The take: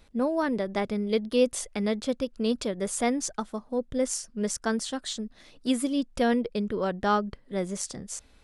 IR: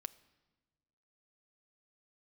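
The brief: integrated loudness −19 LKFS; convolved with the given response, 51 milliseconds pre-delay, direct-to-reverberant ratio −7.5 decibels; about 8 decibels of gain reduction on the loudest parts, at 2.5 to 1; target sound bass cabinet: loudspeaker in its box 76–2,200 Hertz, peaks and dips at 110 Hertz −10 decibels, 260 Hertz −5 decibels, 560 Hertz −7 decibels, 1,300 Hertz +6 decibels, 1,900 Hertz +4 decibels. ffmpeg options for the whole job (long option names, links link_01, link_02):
-filter_complex "[0:a]acompressor=threshold=-29dB:ratio=2.5,asplit=2[link_01][link_02];[1:a]atrim=start_sample=2205,adelay=51[link_03];[link_02][link_03]afir=irnorm=-1:irlink=0,volume=11dB[link_04];[link_01][link_04]amix=inputs=2:normalize=0,highpass=frequency=76:width=0.5412,highpass=frequency=76:width=1.3066,equalizer=frequency=110:width_type=q:width=4:gain=-10,equalizer=frequency=260:width_type=q:width=4:gain=-5,equalizer=frequency=560:width_type=q:width=4:gain=-7,equalizer=frequency=1300:width_type=q:width=4:gain=6,equalizer=frequency=1900:width_type=q:width=4:gain=4,lowpass=frequency=2200:width=0.5412,lowpass=frequency=2200:width=1.3066,volume=8.5dB"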